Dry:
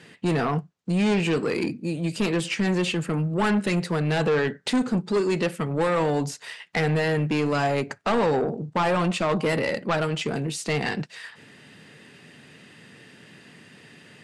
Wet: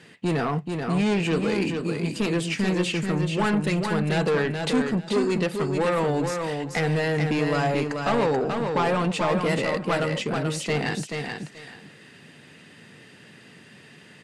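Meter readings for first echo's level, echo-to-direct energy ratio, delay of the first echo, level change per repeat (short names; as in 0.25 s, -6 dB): -5.0 dB, -5.0 dB, 0.433 s, -14.5 dB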